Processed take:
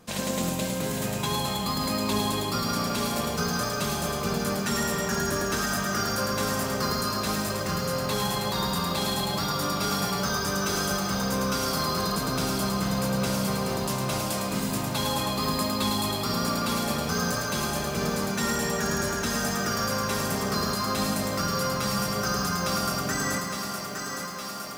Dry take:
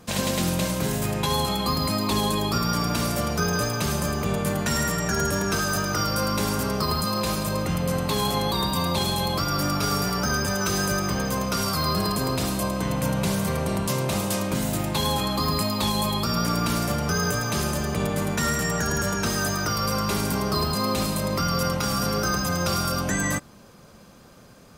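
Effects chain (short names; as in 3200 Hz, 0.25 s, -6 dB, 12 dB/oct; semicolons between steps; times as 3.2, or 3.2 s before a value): bell 67 Hz -6.5 dB 1.4 oct; on a send: thinning echo 0.862 s, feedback 78%, high-pass 160 Hz, level -7 dB; on the sum: lo-fi delay 0.107 s, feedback 80%, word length 7-bit, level -8 dB; gain -4.5 dB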